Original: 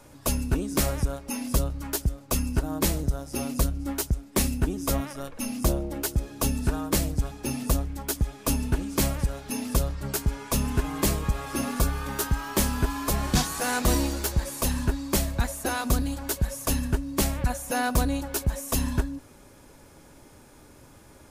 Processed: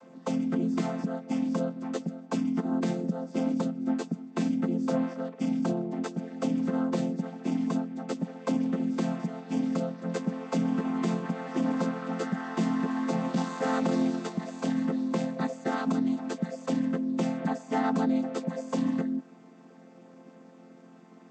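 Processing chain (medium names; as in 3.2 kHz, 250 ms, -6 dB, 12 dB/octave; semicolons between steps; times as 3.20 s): vocoder on a held chord major triad, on F3; tone controls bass -4 dB, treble -3 dB; peak limiter -23.5 dBFS, peak gain reduction 7.5 dB; trim +5 dB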